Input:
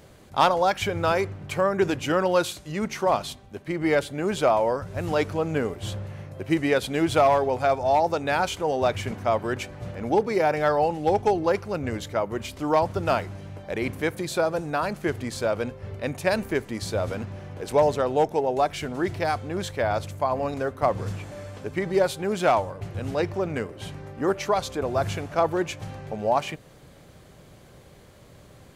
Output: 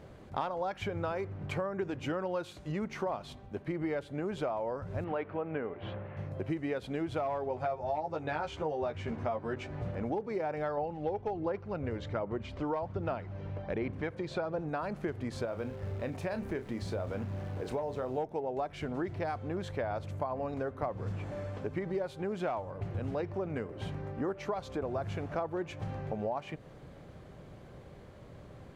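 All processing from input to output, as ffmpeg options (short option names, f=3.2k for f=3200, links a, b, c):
-filter_complex "[0:a]asettb=1/sr,asplit=3[a][b][c];[a]atrim=end=5.044[d];[b]atrim=start=5.04:end=6.17,asetpts=PTS-STARTPTS,afade=t=in:d=0.004:c=qsin,afade=t=out:st=1.126:d=0.004:c=qsin,lowpass=f=2.6k:w=0.5412,lowpass=f=2.6k:w=1.3066,aemphasis=mode=production:type=bsi[e];[c]atrim=start=6.166[f];[d][e]acrossfade=d=0.004:c1=hsin:c2=qsin[g];[g][f]acrossfade=d=0.004:c1=qsin:c2=hsin,asettb=1/sr,asplit=3[h][i][j];[h]atrim=end=7.494[k];[i]atrim=start=7.49:end=9.82,asetpts=PTS-STARTPTS,afade=t=in:d=0.004:c=qsin,afade=t=out:st=2.326:d=0.004:c=qsin,lowpass=8k,asplit=2[l][m];[m]adelay=13,volume=-3dB[n];[l][n]amix=inputs=2:normalize=0,atrim=end_sample=102753[o];[j]atrim=start=9.816[p];[k][o]acrossfade=d=0.004:c1=hsin:c2=qsin[q];[q][p]acrossfade=d=0.004:c1=qsin:c2=hsin,asettb=1/sr,asplit=3[r][s][t];[r]atrim=end=10.774[u];[s]atrim=start=10.77:end=14.69,asetpts=PTS-STARTPTS,afade=t=in:d=0.004:c=qsin,afade=t=out:st=3.916:d=0.004:c=qsin,lowpass=5.2k,aphaser=in_gain=1:out_gain=1:delay=2.2:decay=0.32:speed=1.3:type=sinusoidal[v];[t]atrim=start=14.686[w];[u][v]acrossfade=d=0.004:c1=hsin:c2=qsin[x];[x][w]acrossfade=d=0.004:c1=qsin:c2=hsin,asettb=1/sr,asplit=3[y][z][aa];[y]atrim=end=15.454[ab];[z]atrim=start=15.45:end=18.18,asetpts=PTS-STARTPTS,afade=t=in:d=0.004:c=qsin,afade=t=out:st=2.726:d=0.004:c=qsin,acompressor=threshold=-35dB:ratio=1.5:attack=3.2:release=140:knee=1:detection=peak,acrusher=bits=9:dc=4:mix=0:aa=0.000001,asplit=2[ac][ad];[ad]adelay=31,volume=-10.5dB[ae];[ac][ae]amix=inputs=2:normalize=0,atrim=end_sample=120393[af];[aa]atrim=start=18.176[ag];[ab][af]acrossfade=d=0.004:c1=hsin:c2=qsin[ah];[ah][ag]acrossfade=d=0.004:c1=qsin:c2=hsin,lowpass=f=1.5k:p=1,acompressor=threshold=-32dB:ratio=6"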